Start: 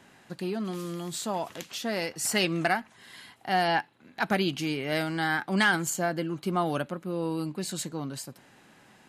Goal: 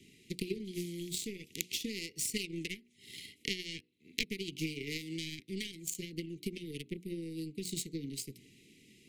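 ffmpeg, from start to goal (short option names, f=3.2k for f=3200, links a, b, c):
-af "bandreject=f=60:t=h:w=6,bandreject=f=120:t=h:w=6,bandreject=f=180:t=h:w=6,bandreject=f=240:t=h:w=6,bandreject=f=300:t=h:w=6,bandreject=f=360:t=h:w=6,bandreject=f=420:t=h:w=6,bandreject=f=480:t=h:w=6,acompressor=threshold=-41dB:ratio=10,aphaser=in_gain=1:out_gain=1:delay=4.3:decay=0.24:speed=1.3:type=triangular,aeval=exprs='0.0473*(cos(1*acos(clip(val(0)/0.0473,-1,1)))-cos(1*PI/2))+0.0106*(cos(3*acos(clip(val(0)/0.0473,-1,1)))-cos(3*PI/2))+0.0015*(cos(7*acos(clip(val(0)/0.0473,-1,1)))-cos(7*PI/2))':c=same,asuperstop=centerf=970:order=20:qfactor=0.61,volume=17.5dB"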